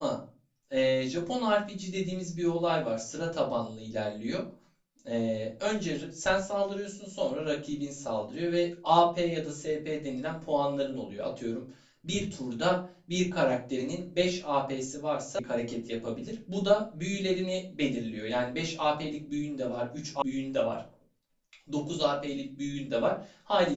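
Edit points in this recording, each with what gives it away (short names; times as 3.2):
15.39 sound cut off
20.22 sound cut off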